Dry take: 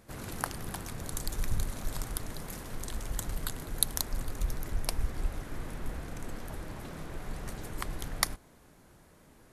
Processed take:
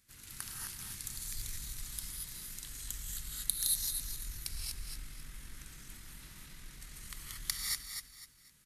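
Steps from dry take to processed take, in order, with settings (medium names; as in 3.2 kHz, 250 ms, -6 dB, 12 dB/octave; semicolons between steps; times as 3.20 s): amplifier tone stack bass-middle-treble 6-0-2; hum notches 60/120/180 Hz; on a send: feedback delay 277 ms, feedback 31%, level -7 dB; on the sum: gated-style reverb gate 280 ms rising, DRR -3 dB; tempo 1.1×; in parallel at -5 dB: overload inside the chain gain 32.5 dB; on the sum: tilt shelf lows -7 dB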